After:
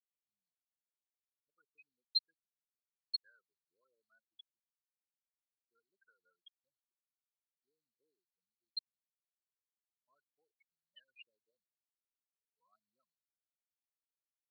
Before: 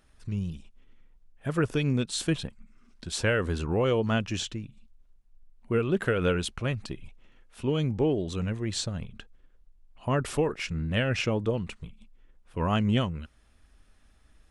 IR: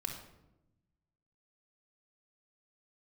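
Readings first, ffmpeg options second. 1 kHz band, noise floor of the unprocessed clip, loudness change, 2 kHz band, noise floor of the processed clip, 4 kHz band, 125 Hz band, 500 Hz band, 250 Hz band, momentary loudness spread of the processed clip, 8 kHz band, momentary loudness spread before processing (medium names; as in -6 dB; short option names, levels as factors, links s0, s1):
under -40 dB, -61 dBFS, -10.5 dB, -36.0 dB, under -85 dBFS, -8.0 dB, under -40 dB, under -40 dB, under -40 dB, 9 LU, under -40 dB, 15 LU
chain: -af "afftfilt=real='re*gte(hypot(re,im),0.158)':imag='im*gte(hypot(re,im),0.158)':win_size=1024:overlap=0.75,asuperpass=centerf=4300:order=4:qfactor=7.6,volume=5.62"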